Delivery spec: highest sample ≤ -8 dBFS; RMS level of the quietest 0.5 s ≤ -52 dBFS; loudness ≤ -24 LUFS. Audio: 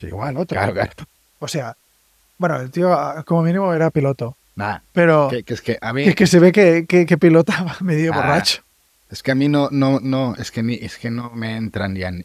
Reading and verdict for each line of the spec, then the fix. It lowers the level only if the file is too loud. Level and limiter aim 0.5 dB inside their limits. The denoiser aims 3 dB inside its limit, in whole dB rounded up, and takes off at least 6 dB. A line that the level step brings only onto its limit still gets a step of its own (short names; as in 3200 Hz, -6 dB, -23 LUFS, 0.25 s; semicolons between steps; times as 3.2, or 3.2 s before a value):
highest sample -1.5 dBFS: fail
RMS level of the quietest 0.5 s -59 dBFS: OK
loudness -17.5 LUFS: fail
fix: gain -7 dB